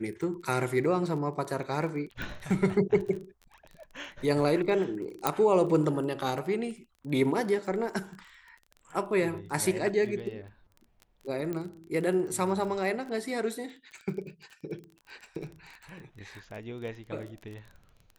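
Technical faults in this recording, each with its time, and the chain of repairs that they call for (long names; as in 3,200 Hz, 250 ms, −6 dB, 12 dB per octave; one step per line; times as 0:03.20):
surface crackle 21 per second −38 dBFS
0:02.22: click
0:05.27: click −9 dBFS
0:11.53: click −22 dBFS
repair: click removal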